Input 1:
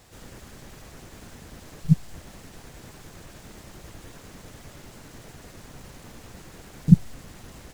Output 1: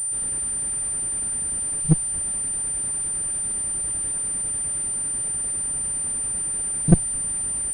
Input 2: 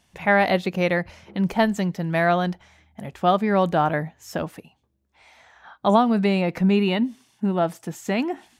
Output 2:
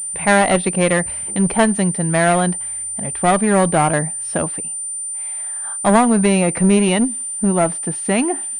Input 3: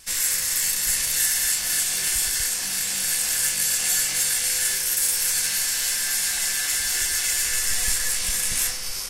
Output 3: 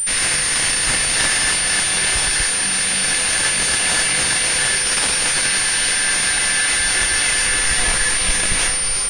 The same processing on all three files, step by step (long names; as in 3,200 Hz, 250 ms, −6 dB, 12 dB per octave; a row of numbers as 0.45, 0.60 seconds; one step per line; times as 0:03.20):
asymmetric clip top −20.5 dBFS, bottom −3.5 dBFS
switching amplifier with a slow clock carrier 9,100 Hz
normalise the peak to −1.5 dBFS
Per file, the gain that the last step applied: +3.0, +6.0, +12.0 decibels